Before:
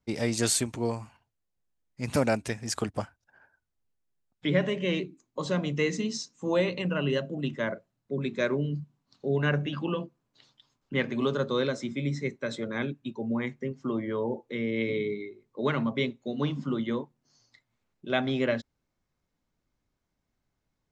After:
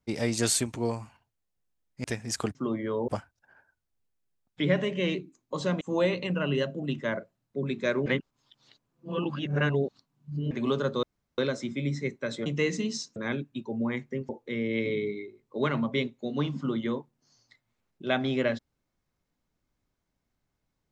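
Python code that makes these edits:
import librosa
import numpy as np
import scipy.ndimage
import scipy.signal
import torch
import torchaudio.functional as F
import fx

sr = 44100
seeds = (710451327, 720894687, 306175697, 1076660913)

y = fx.edit(x, sr, fx.cut(start_s=2.04, length_s=0.38),
    fx.move(start_s=5.66, length_s=0.7, to_s=12.66),
    fx.reverse_span(start_s=8.61, length_s=2.45),
    fx.insert_room_tone(at_s=11.58, length_s=0.35),
    fx.move(start_s=13.79, length_s=0.53, to_s=2.93), tone=tone)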